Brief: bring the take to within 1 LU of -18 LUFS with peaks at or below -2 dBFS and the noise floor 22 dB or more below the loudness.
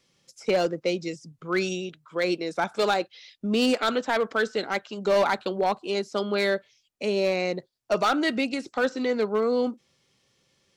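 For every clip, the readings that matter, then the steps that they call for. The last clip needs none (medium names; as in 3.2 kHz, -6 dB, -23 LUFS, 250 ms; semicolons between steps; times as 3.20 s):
clipped samples 1.0%; clipping level -16.5 dBFS; loudness -26.5 LUFS; peak level -16.5 dBFS; loudness target -18.0 LUFS
-> clip repair -16.5 dBFS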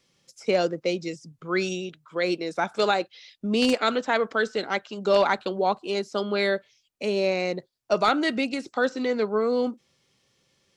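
clipped samples 0.0%; loudness -25.5 LUFS; peak level -7.5 dBFS; loudness target -18.0 LUFS
-> trim +7.5 dB; peak limiter -2 dBFS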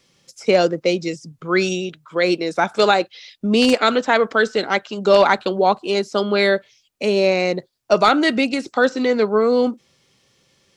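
loudness -18.5 LUFS; peak level -2.0 dBFS; noise floor -62 dBFS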